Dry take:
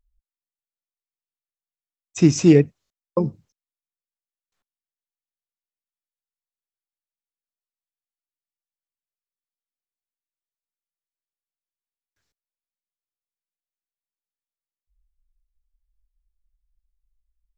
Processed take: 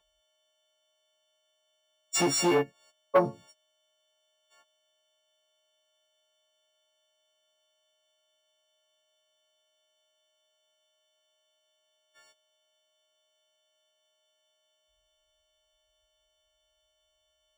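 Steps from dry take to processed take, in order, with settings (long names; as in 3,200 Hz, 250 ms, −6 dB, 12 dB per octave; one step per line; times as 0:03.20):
every partial snapped to a pitch grid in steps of 4 semitones
downward compressor 8 to 1, threshold −27 dBFS, peak gain reduction 18.5 dB
soft clipping −28.5 dBFS, distortion −11 dB
high-pass filter 370 Hz 6 dB per octave
parametric band 850 Hz +10 dB 2.3 octaves
linearly interpolated sample-rate reduction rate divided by 3×
level +8 dB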